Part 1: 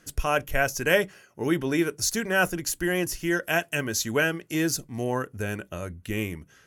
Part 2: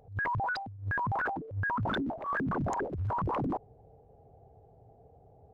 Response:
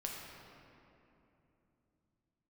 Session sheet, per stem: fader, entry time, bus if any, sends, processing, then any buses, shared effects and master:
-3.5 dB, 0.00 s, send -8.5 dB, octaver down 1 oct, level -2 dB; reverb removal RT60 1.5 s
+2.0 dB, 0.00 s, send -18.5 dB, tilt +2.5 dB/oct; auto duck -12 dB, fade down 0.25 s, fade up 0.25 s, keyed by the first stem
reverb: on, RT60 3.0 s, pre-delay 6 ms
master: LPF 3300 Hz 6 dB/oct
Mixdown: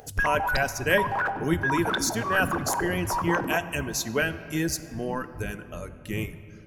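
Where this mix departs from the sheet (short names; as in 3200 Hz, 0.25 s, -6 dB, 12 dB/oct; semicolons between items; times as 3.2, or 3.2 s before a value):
stem 2 +2.0 dB -> +14.0 dB; master: missing LPF 3300 Hz 6 dB/oct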